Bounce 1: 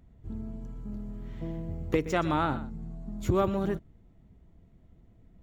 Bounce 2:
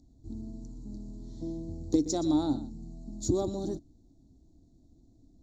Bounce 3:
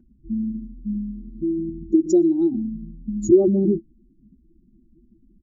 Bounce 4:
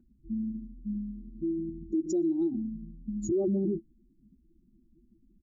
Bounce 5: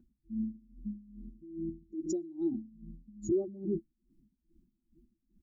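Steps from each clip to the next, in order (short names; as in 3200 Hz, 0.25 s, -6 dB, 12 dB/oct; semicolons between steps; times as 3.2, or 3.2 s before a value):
EQ curve 130 Hz 0 dB, 190 Hz -4 dB, 290 Hz +13 dB, 440 Hz -4 dB, 770 Hz -1 dB, 1300 Hz -18 dB, 2800 Hz -23 dB, 4000 Hz +12 dB, 7000 Hz +15 dB, 11000 Hz -8 dB; gain -4 dB
spectral contrast raised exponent 2.1; comb 5.2 ms, depth 82%; small resonant body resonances 210/340/1500 Hz, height 13 dB
limiter -14.5 dBFS, peak gain reduction 9.5 dB; gain -7.5 dB
dB-linear tremolo 2.4 Hz, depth 20 dB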